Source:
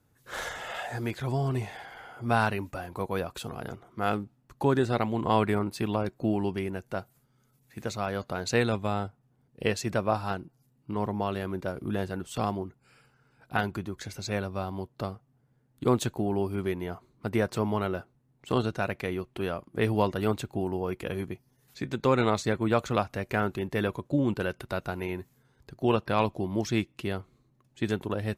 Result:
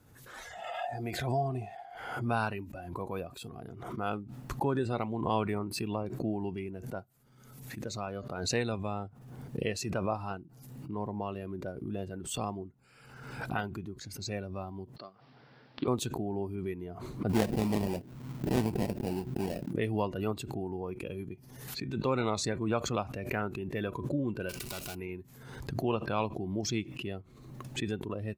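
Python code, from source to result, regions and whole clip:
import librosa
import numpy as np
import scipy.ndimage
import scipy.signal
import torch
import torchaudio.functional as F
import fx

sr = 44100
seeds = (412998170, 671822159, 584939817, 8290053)

y = fx.chain(x, sr, fx.peak_eq(hz=700.0, db=11.5, octaves=0.25),
    fx.pre_swell(db_per_s=44.0), at=(0.53, 1.97))
y = fx.chain(y, sr, fx.highpass(hz=950.0, slope=6),
    fx.resample_bad(factor=4, down='none', up='filtered'), at=(14.96, 15.88))
y = fx.chain(y, sr, fx.sample_hold(seeds[0], rate_hz=1200.0, jitter_pct=20),
    fx.peak_eq(hz=210.0, db=7.0, octaves=1.9), at=(17.29, 19.71))
y = fx.chain(y, sr, fx.power_curve(exponent=0.5),
    fx.spectral_comp(ratio=2.0), at=(24.49, 24.95))
y = fx.noise_reduce_blind(y, sr, reduce_db=11)
y = fx.pre_swell(y, sr, db_per_s=48.0)
y = y * 10.0 ** (-6.5 / 20.0)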